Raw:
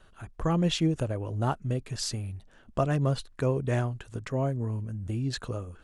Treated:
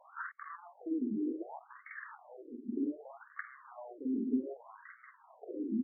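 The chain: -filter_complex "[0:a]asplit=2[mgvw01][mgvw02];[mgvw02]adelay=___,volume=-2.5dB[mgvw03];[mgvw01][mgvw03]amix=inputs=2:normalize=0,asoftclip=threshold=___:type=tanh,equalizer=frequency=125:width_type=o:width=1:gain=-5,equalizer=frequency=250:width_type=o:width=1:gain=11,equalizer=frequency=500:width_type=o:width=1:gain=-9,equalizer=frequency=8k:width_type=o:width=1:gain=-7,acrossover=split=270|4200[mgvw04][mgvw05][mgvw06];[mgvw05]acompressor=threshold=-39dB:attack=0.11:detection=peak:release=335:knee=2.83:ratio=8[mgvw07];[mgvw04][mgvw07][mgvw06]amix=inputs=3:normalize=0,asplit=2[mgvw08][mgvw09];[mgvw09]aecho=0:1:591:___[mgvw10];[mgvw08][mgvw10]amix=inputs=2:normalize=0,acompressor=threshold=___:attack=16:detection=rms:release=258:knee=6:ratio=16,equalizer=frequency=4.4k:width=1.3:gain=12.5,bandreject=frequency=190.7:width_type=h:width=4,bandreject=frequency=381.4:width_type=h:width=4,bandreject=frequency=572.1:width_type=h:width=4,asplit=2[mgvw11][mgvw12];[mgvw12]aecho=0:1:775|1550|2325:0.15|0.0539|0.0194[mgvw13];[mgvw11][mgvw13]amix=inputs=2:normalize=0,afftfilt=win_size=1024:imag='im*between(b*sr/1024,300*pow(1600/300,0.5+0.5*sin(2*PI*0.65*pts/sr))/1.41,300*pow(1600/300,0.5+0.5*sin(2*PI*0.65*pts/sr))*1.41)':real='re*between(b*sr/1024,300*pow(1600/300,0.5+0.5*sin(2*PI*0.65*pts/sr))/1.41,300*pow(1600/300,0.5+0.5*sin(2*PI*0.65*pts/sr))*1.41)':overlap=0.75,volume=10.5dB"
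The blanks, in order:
46, -25.5dB, 0.355, -33dB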